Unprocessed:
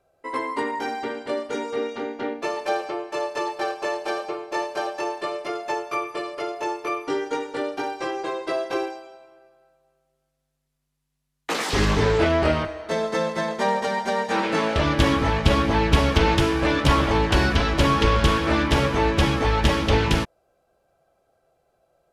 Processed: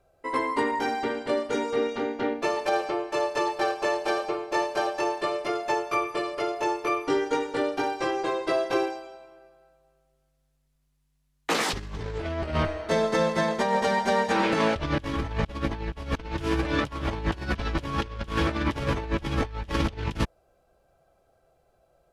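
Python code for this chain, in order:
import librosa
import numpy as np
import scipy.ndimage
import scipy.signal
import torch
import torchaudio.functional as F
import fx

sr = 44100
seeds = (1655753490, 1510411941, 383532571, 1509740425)

y = fx.highpass(x, sr, hz=49.0, slope=12, at=(16.31, 18.81))
y = fx.low_shelf(y, sr, hz=82.0, db=11.5)
y = fx.over_compress(y, sr, threshold_db=-22.0, ratio=-0.5)
y = y * librosa.db_to_amplitude(-3.5)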